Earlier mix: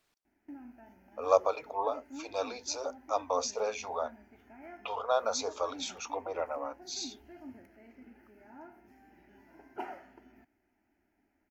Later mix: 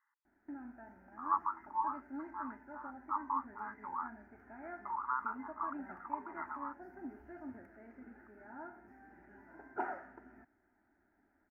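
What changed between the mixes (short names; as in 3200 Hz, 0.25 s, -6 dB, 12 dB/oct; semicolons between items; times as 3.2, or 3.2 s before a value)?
speech: add brick-wall FIR band-pass 820–2100 Hz; background: add resonant high shelf 2200 Hz -12.5 dB, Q 3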